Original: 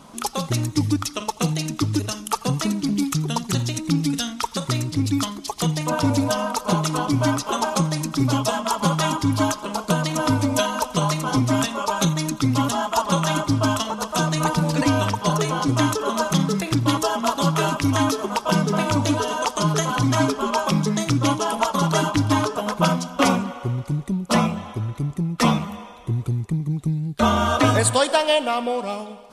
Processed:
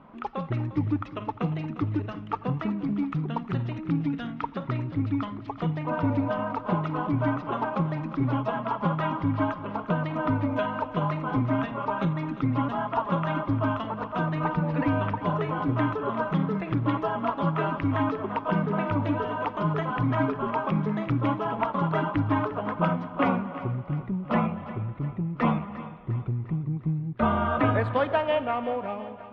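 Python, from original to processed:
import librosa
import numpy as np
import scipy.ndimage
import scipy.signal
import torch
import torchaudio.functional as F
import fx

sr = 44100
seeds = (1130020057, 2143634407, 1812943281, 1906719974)

y = scipy.signal.sosfilt(scipy.signal.butter(4, 2300.0, 'lowpass', fs=sr, output='sos'), x)
y = fx.echo_feedback(y, sr, ms=352, feedback_pct=52, wet_db=-15)
y = F.gain(torch.from_numpy(y), -5.5).numpy()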